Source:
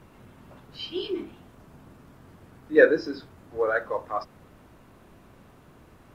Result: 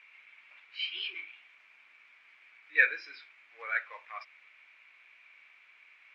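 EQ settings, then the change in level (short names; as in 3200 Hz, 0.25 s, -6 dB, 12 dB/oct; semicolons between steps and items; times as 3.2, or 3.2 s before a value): resonant high-pass 2300 Hz, resonance Q 10; air absorption 120 m; high shelf 3400 Hz -6.5 dB; 0.0 dB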